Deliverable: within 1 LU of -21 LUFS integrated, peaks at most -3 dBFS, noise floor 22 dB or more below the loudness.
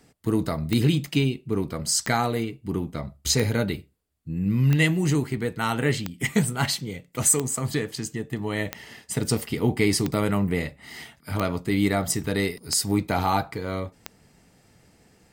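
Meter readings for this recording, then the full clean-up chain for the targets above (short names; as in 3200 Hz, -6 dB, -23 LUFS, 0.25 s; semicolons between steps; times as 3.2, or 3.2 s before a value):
clicks 11; loudness -25.0 LUFS; peak -7.5 dBFS; loudness target -21.0 LUFS
-> de-click; gain +4 dB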